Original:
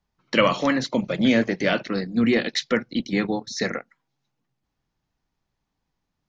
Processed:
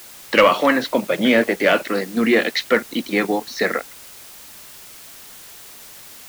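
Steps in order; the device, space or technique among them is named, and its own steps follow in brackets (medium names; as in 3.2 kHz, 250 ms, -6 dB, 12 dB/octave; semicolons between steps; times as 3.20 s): tape answering machine (band-pass 340–3300 Hz; saturation -10.5 dBFS, distortion -21 dB; wow and flutter; white noise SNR 20 dB); trim +8 dB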